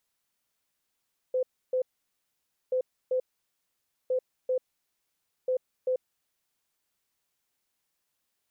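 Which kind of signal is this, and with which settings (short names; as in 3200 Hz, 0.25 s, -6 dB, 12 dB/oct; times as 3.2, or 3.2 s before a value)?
beep pattern sine 511 Hz, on 0.09 s, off 0.30 s, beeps 2, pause 0.90 s, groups 4, -23.5 dBFS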